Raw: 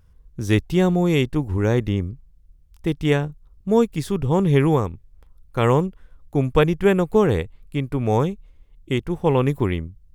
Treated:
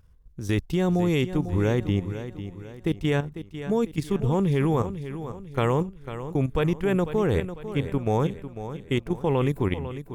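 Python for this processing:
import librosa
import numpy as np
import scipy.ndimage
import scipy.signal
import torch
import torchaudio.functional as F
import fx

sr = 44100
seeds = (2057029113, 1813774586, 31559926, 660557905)

p1 = fx.level_steps(x, sr, step_db=11)
y = p1 + fx.echo_feedback(p1, sr, ms=498, feedback_pct=43, wet_db=-11.5, dry=0)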